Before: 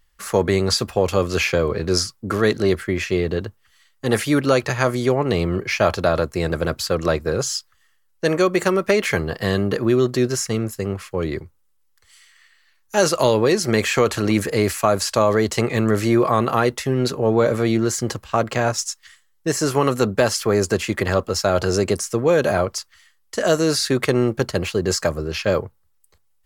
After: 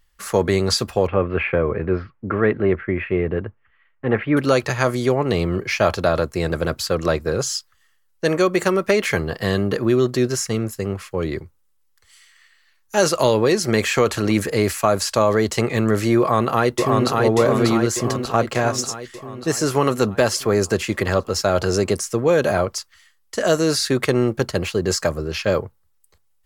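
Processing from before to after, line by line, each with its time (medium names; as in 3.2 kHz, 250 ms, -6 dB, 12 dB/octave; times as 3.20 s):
1.07–4.37 s: steep low-pass 2.5 kHz
16.19–17.17 s: echo throw 590 ms, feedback 60%, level -2 dB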